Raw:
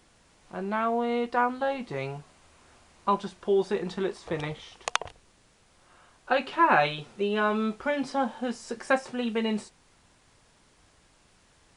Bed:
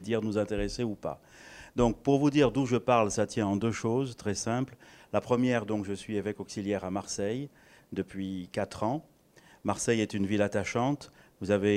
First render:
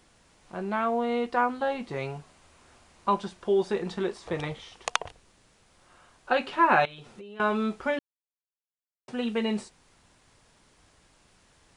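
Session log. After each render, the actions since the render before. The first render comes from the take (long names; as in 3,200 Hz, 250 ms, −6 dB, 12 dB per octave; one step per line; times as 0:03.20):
0:06.85–0:07.40: downward compressor 10 to 1, threshold −41 dBFS
0:07.99–0:09.08: silence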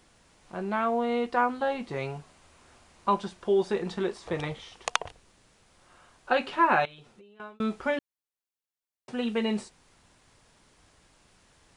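0:06.52–0:07.60: fade out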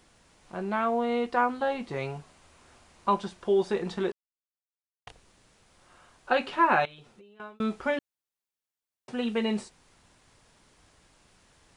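0:04.12–0:05.07: silence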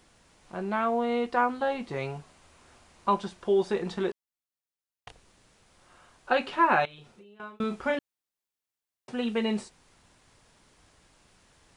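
0:06.90–0:07.95: double-tracking delay 34 ms −8 dB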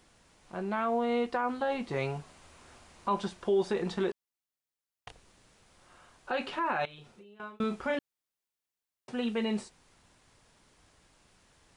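brickwall limiter −20.5 dBFS, peak gain reduction 10.5 dB
speech leveller 2 s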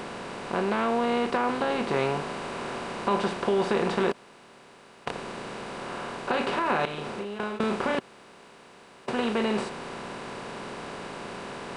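compressor on every frequency bin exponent 0.4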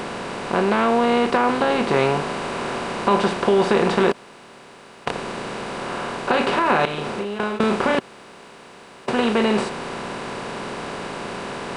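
level +7.5 dB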